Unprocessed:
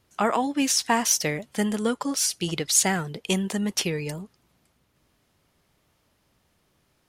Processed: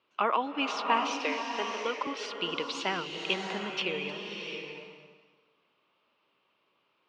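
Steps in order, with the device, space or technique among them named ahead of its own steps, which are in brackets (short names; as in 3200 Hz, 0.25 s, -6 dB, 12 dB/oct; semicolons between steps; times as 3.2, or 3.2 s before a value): phone earpiece (speaker cabinet 390–3600 Hz, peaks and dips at 730 Hz -5 dB, 1100 Hz +6 dB, 1800 Hz -7 dB, 2700 Hz +7 dB); 1.22–2.07 HPF 290 Hz 24 dB/oct; bloom reverb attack 0.69 s, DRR 3.5 dB; gain -3.5 dB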